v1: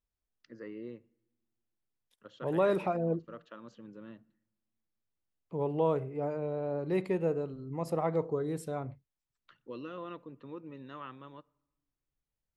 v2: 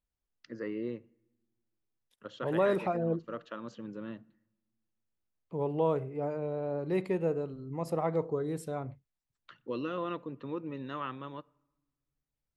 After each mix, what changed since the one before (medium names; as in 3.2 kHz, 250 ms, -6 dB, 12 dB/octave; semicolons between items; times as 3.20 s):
first voice +7.0 dB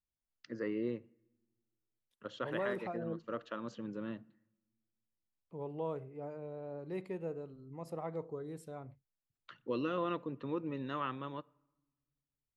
second voice -10.0 dB